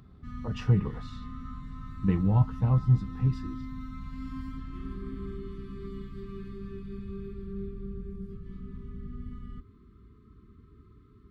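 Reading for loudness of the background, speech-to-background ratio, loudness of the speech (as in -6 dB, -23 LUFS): -41.5 LUFS, 14.0 dB, -27.5 LUFS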